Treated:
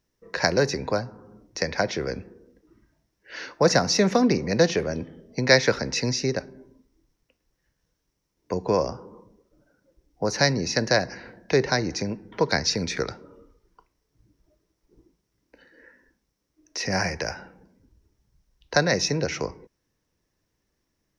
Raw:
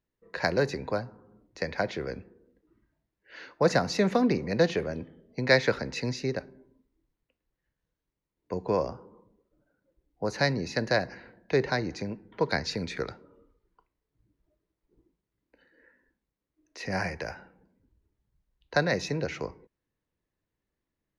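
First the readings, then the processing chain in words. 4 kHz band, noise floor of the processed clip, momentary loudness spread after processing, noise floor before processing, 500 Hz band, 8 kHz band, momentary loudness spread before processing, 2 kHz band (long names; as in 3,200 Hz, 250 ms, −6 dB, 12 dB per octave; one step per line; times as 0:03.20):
+9.0 dB, −77 dBFS, 15 LU, below −85 dBFS, +4.0 dB, can't be measured, 16 LU, +4.5 dB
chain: parametric band 5,600 Hz +13 dB 0.32 octaves
in parallel at −1 dB: downward compressor, threshold −39 dBFS, peak gain reduction 22 dB
on the sum: level +3 dB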